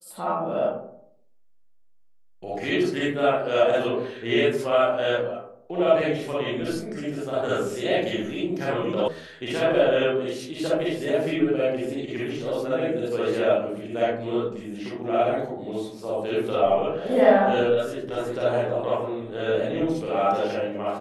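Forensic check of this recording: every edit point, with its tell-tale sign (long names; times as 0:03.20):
0:09.08: cut off before it has died away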